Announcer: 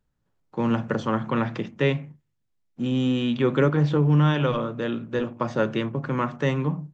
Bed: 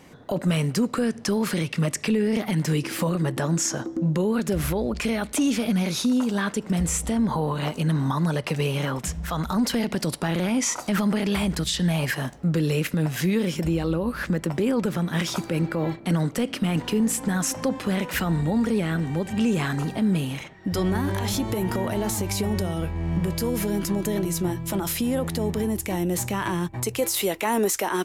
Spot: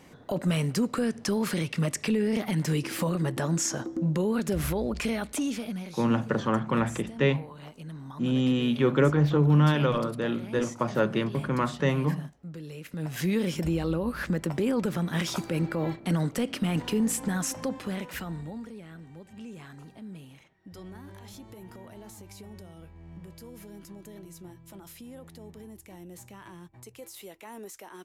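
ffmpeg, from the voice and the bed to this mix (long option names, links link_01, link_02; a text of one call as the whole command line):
ffmpeg -i stem1.wav -i stem2.wav -filter_complex "[0:a]adelay=5400,volume=-1.5dB[link_01];[1:a]volume=11dB,afade=type=out:start_time=5.04:duration=0.92:silence=0.188365,afade=type=in:start_time=12.84:duration=0.48:silence=0.188365,afade=type=out:start_time=17.13:duration=1.6:silence=0.141254[link_02];[link_01][link_02]amix=inputs=2:normalize=0" out.wav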